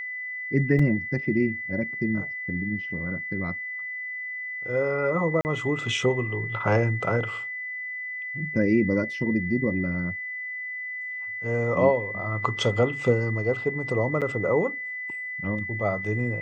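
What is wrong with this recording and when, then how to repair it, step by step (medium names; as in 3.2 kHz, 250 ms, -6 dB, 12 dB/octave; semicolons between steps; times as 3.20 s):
whine 2 kHz -31 dBFS
0.79 s: dropout 3.8 ms
5.41–5.45 s: dropout 39 ms
14.21–14.22 s: dropout 7.3 ms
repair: band-stop 2 kHz, Q 30; interpolate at 0.79 s, 3.8 ms; interpolate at 5.41 s, 39 ms; interpolate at 14.21 s, 7.3 ms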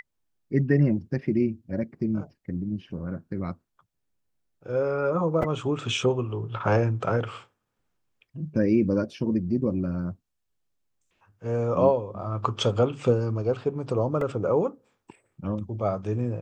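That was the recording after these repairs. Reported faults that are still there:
nothing left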